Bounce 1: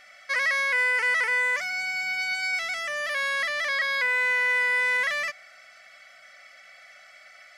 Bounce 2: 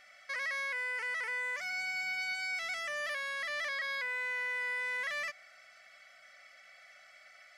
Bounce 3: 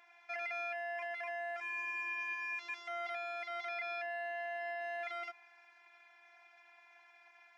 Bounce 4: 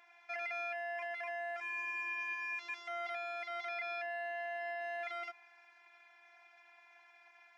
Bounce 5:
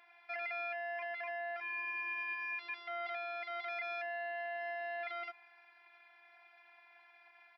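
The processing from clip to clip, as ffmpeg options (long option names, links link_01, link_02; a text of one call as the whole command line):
ffmpeg -i in.wav -af "alimiter=limit=-22dB:level=0:latency=1:release=118,volume=-7dB" out.wav
ffmpeg -i in.wav -af "bandpass=frequency=390:width_type=q:width=0.83:csg=0,afreqshift=200,afftfilt=real='hypot(re,im)*cos(PI*b)':imag='0':win_size=512:overlap=0.75,volume=10dB" out.wav
ffmpeg -i in.wav -af anull out.wav
ffmpeg -i in.wav -af "aresample=11025,aresample=44100" out.wav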